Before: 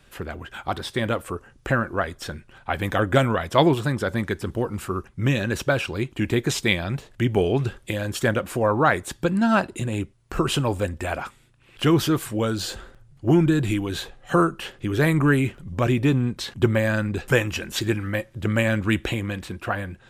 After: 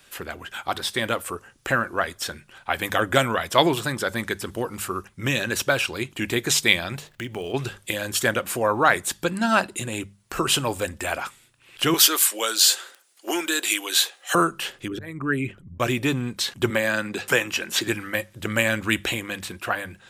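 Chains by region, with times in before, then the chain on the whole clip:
0:07.07–0:07.54: running median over 5 samples + downward compressor 2.5 to 1, threshold −28 dBFS
0:11.94–0:14.35: Bessel high-pass filter 480 Hz, order 8 + high-shelf EQ 2,100 Hz +9 dB
0:14.88–0:15.80: spectral envelope exaggerated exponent 1.5 + volume swells 469 ms
0:16.70–0:17.88: high-pass filter 160 Hz + high-shelf EQ 6,200 Hz −6.5 dB + multiband upward and downward compressor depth 40%
whole clip: spectral tilt +2.5 dB per octave; mains-hum notches 50/100/150/200 Hz; level +1 dB

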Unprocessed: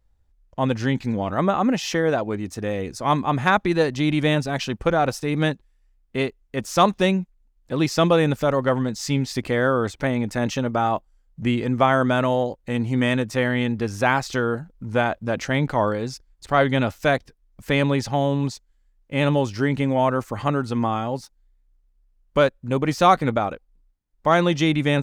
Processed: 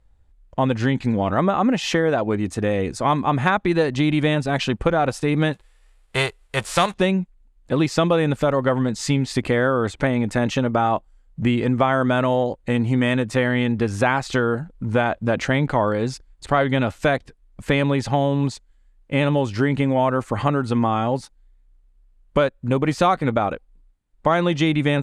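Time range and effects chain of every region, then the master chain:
0:05.52–0:06.92: spectral envelope flattened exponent 0.6 + parametric band 250 Hz −14.5 dB 0.64 octaves + notch filter 6,400 Hz, Q 25
whole clip: low-pass filter 10,000 Hz 24 dB per octave; parametric band 5,600 Hz −7.5 dB 0.6 octaves; downward compressor 3 to 1, threshold −23 dBFS; level +6.5 dB

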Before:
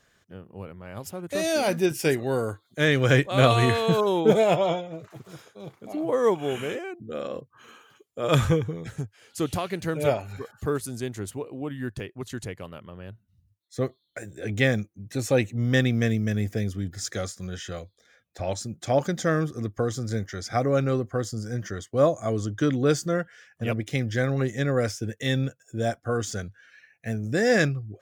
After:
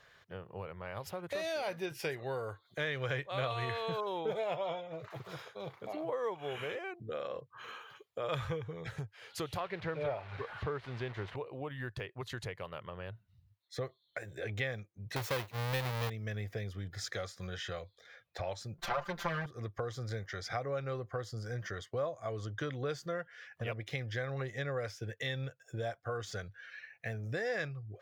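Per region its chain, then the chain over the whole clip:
0:09.60–0:11.36: linear delta modulator 64 kbit/s, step −38.5 dBFS + low-pass filter 2,900 Hz + leveller curve on the samples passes 1
0:15.16–0:16.10: each half-wave held at its own peak + high-shelf EQ 9,000 Hz +10 dB
0:18.78–0:19.46: lower of the sound and its delayed copy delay 5.1 ms + parametric band 1,300 Hz +6 dB 2.2 octaves + comb filter 5.8 ms, depth 95%
whole clip: octave-band graphic EQ 125/250/500/1,000/2,000/4,000/8,000 Hz +5/−9/+6/+7/+6/+7/−7 dB; downward compressor 3 to 1, threshold −35 dBFS; level −4 dB

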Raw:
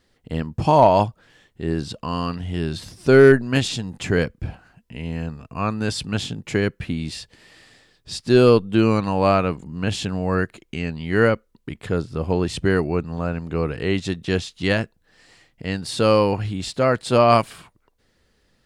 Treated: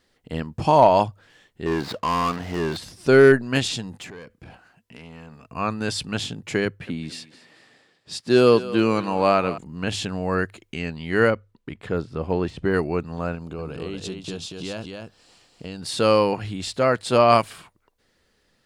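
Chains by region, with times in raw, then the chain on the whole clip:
0:01.66–0:02.77: running median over 15 samples + mid-hump overdrive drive 20 dB, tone 4,700 Hz, clips at −13 dBFS
0:03.96–0:05.48: low-shelf EQ 120 Hz −10 dB + downward compressor 8 to 1, threshold −31 dBFS + tube saturation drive 30 dB, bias 0.3
0:06.65–0:09.58: high-pass filter 120 Hz + feedback echo with a high-pass in the loop 221 ms, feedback 39%, high-pass 360 Hz, level −14 dB + one half of a high-frequency compander decoder only
0:11.30–0:12.74: de-essing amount 100% + high-shelf EQ 5,800 Hz −11.5 dB
0:13.35–0:15.81: parametric band 1,900 Hz −13.5 dB 0.42 octaves + downward compressor 5 to 1, threshold −26 dBFS + single-tap delay 234 ms −4.5 dB
whole clip: low-shelf EQ 250 Hz −5.5 dB; mains-hum notches 50/100 Hz

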